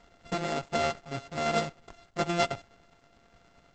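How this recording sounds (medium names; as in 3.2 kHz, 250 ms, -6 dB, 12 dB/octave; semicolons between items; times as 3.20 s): a buzz of ramps at a fixed pitch in blocks of 64 samples; tremolo saw down 9.6 Hz, depth 35%; Opus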